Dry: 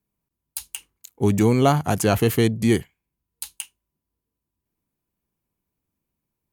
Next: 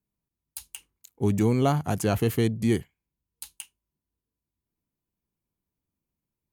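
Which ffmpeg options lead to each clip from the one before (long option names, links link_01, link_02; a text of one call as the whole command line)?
ffmpeg -i in.wav -af "lowshelf=frequency=390:gain=4,volume=-7.5dB" out.wav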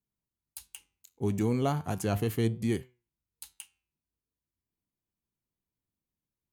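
ffmpeg -i in.wav -af "flanger=delay=7.5:depth=5.4:regen=85:speed=0.36:shape=triangular,volume=-1dB" out.wav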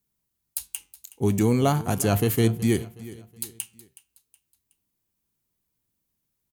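ffmpeg -i in.wav -af "aecho=1:1:370|740|1110:0.126|0.0504|0.0201,crystalizer=i=1:c=0,volume=7dB" out.wav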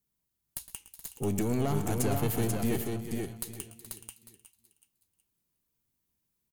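ffmpeg -i in.wav -filter_complex "[0:a]alimiter=limit=-15.5dB:level=0:latency=1:release=179,aeval=exprs='(tanh(8.91*val(0)+0.7)-tanh(0.7))/8.91':channel_layout=same,asplit=2[link_01][link_02];[link_02]aecho=0:1:112|129|424|488|848:0.178|0.106|0.211|0.631|0.112[link_03];[link_01][link_03]amix=inputs=2:normalize=0" out.wav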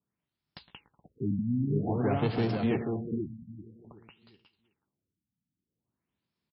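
ffmpeg -i in.wav -af "highpass=100,lowpass=7500,aecho=1:1:198:0.0841,afftfilt=real='re*lt(b*sr/1024,280*pow(5600/280,0.5+0.5*sin(2*PI*0.51*pts/sr)))':imag='im*lt(b*sr/1024,280*pow(5600/280,0.5+0.5*sin(2*PI*0.51*pts/sr)))':win_size=1024:overlap=0.75,volume=2.5dB" out.wav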